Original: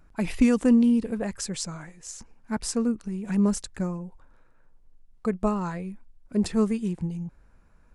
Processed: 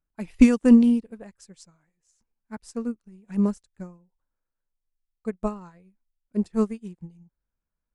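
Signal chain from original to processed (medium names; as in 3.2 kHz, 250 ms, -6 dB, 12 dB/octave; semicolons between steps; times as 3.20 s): upward expansion 2.5:1, over -38 dBFS; trim +7 dB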